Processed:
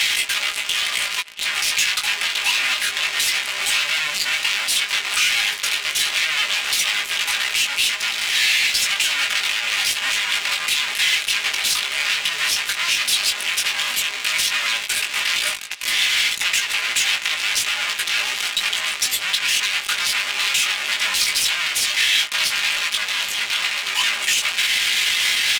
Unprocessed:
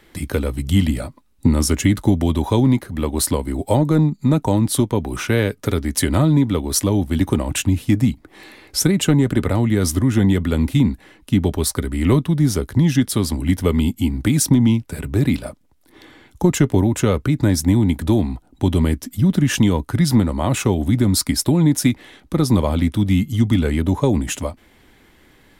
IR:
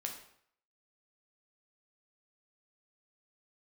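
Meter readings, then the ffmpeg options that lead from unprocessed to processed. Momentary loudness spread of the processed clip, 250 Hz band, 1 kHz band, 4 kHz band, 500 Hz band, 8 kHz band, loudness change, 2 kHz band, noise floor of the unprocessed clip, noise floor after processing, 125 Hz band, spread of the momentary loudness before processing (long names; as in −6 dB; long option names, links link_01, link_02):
4 LU, −33.0 dB, 0.0 dB, +13.5 dB, −18.5 dB, +4.5 dB, 0.0 dB, +13.5 dB, −53 dBFS, −29 dBFS, below −35 dB, 6 LU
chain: -af "aeval=exprs='val(0)+0.5*0.0631*sgn(val(0))':channel_layout=same,aeval=exprs='(tanh(4.47*val(0)+0.3)-tanh(0.3))/4.47':channel_layout=same,aeval=exprs='0.299*sin(PI/2*4.47*val(0)/0.299)':channel_layout=same,aecho=1:1:680|1360|2040|2720:0.112|0.0561|0.0281|0.014,flanger=delay=17.5:depth=2.9:speed=0.12,highpass=frequency=2600:width_type=q:width=1.8,alimiter=limit=-12.5dB:level=0:latency=1:release=257,aecho=1:1:4.9:0.46,adynamicsmooth=sensitivity=5.5:basefreq=3500,volume=5dB"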